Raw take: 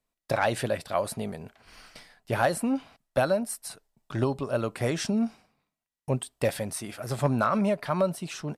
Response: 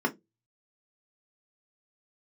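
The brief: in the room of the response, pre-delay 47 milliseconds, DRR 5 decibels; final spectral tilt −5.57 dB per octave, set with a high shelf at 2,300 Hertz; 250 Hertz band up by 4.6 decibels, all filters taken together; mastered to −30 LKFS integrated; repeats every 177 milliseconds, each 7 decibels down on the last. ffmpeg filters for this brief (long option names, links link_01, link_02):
-filter_complex "[0:a]equalizer=frequency=250:width_type=o:gain=5.5,highshelf=frequency=2300:gain=-7,aecho=1:1:177|354|531|708|885:0.447|0.201|0.0905|0.0407|0.0183,asplit=2[link_01][link_02];[1:a]atrim=start_sample=2205,adelay=47[link_03];[link_02][link_03]afir=irnorm=-1:irlink=0,volume=-15dB[link_04];[link_01][link_04]amix=inputs=2:normalize=0,volume=-6dB"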